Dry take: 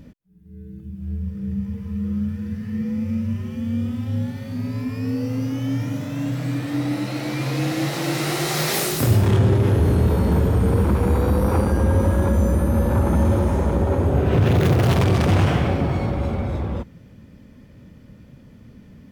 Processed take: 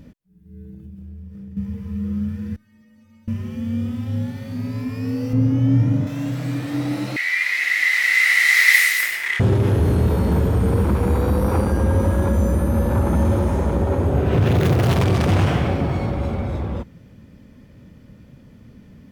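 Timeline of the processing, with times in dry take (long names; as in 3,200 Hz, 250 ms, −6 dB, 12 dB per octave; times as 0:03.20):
0:00.65–0:01.57: downward compressor, threshold −34 dBFS
0:02.56–0:03.28: stiff-string resonator 300 Hz, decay 0.39 s, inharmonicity 0.002
0:05.33–0:06.07: spectral tilt −3 dB per octave
0:07.16–0:09.40: high-pass with resonance 2,000 Hz, resonance Q 16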